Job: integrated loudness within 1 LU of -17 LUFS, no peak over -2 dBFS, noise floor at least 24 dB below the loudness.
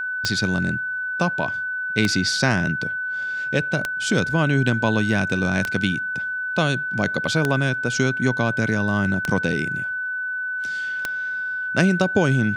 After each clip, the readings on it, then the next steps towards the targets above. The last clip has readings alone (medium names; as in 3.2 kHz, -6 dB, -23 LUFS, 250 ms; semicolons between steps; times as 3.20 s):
clicks found 7; steady tone 1.5 kHz; tone level -24 dBFS; loudness -22.0 LUFS; peak level -4.0 dBFS; loudness target -17.0 LUFS
-> de-click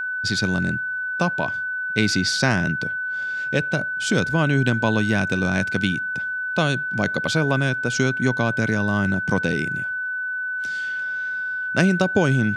clicks found 0; steady tone 1.5 kHz; tone level -24 dBFS
-> band-stop 1.5 kHz, Q 30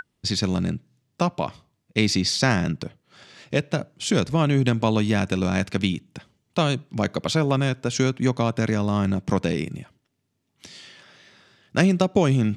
steady tone not found; loudness -23.5 LUFS; peak level -4.0 dBFS; loudness target -17.0 LUFS
-> trim +6.5 dB; peak limiter -2 dBFS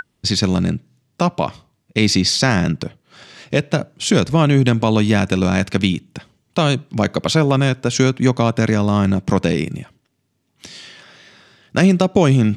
loudness -17.5 LUFS; peak level -2.0 dBFS; noise floor -67 dBFS